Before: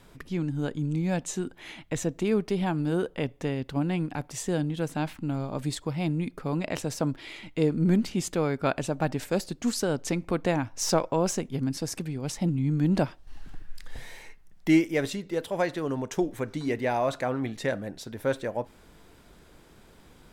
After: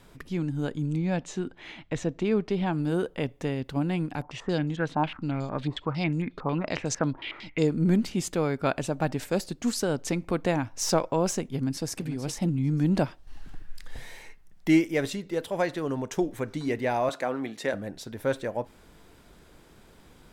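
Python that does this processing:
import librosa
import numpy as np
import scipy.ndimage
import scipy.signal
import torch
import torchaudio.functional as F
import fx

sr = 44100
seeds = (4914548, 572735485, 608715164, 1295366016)

y = fx.lowpass(x, sr, hz=4800.0, slope=12, at=(0.97, 2.73))
y = fx.filter_held_lowpass(y, sr, hz=11.0, low_hz=990.0, high_hz=6600.0, at=(4.22, 7.67))
y = fx.echo_throw(y, sr, start_s=11.56, length_s=0.46, ms=450, feedback_pct=15, wet_db=-10.0)
y = fx.highpass(y, sr, hz=230.0, slope=12, at=(17.09, 17.74))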